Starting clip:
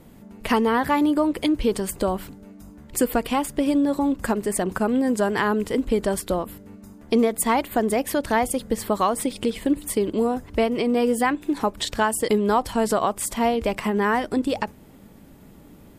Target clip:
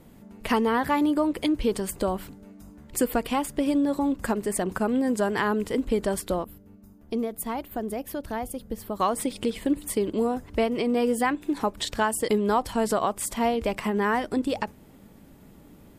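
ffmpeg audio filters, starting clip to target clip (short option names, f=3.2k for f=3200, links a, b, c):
-filter_complex "[0:a]asettb=1/sr,asplit=3[a][b][c];[a]atrim=end=6.444[d];[b]atrim=start=6.44:end=9,asetpts=PTS-STARTPTS,afade=t=in:d=0.004:c=qsin,afade=t=out:st=2.556:d=0.004:c=qsin,equalizer=f=125:t=o:w=1:g=-3,equalizer=f=250:t=o:w=1:g=-4,equalizer=f=500:t=o:w=1:g=-5,equalizer=f=1k:t=o:w=1:g=-6,equalizer=f=2k:t=o:w=1:g=-9,equalizer=f=4k:t=o:w=1:g=-6,equalizer=f=8k:t=o:w=1:g=-10[e];[c]atrim=start=8.996[f];[d][e]acrossfade=d=0.004:c1=hsin:c2=qsin[g];[g][f]acrossfade=d=0.004:c1=qsin:c2=hsin,volume=-3dB"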